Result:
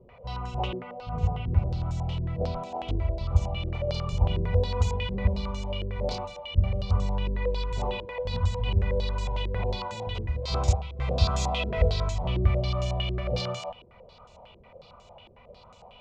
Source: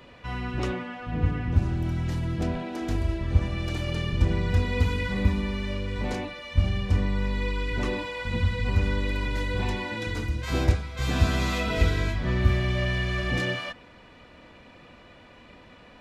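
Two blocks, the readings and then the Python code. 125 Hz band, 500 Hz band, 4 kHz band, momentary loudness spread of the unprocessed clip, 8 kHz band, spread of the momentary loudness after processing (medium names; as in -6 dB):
-1.0 dB, +1.0 dB, -0.5 dB, 7 LU, no reading, 8 LU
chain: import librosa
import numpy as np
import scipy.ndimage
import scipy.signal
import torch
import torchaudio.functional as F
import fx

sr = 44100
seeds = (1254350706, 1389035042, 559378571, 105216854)

y = fx.fixed_phaser(x, sr, hz=710.0, stages=4)
y = fx.filter_held_lowpass(y, sr, hz=11.0, low_hz=350.0, high_hz=7000.0)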